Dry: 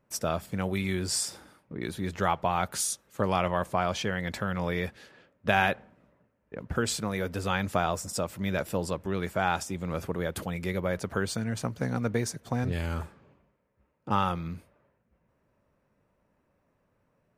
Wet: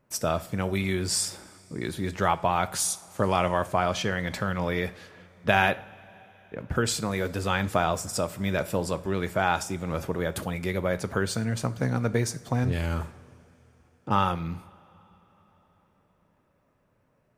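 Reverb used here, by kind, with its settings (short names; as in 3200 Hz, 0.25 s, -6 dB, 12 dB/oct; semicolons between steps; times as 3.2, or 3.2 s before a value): two-slope reverb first 0.41 s, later 4.4 s, from -19 dB, DRR 12.5 dB; gain +2.5 dB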